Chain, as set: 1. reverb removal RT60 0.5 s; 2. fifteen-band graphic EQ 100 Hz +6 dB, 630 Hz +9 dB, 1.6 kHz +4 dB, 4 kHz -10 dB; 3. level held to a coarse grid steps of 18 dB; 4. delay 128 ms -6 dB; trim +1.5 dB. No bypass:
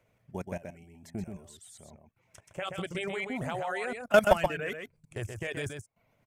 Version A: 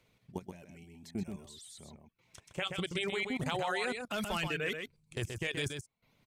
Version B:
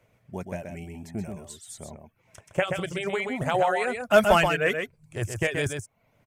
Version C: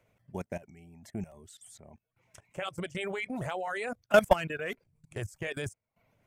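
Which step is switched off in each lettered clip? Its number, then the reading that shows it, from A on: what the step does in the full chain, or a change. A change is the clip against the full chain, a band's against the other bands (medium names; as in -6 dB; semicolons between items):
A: 2, 500 Hz band -7.5 dB; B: 3, crest factor change -4.0 dB; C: 4, momentary loudness spread change -1 LU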